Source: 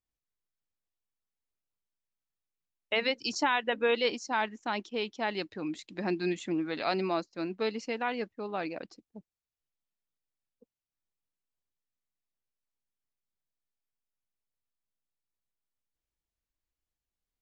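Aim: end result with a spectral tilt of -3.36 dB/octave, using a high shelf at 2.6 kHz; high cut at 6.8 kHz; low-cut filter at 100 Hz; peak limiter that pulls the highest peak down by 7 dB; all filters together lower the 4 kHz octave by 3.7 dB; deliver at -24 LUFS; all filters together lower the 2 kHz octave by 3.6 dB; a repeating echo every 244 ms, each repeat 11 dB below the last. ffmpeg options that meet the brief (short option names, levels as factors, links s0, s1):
-af "highpass=100,lowpass=6800,equalizer=f=2000:t=o:g=-5.5,highshelf=f=2600:g=7,equalizer=f=4000:t=o:g=-8.5,alimiter=limit=0.0708:level=0:latency=1,aecho=1:1:244|488|732:0.282|0.0789|0.0221,volume=3.35"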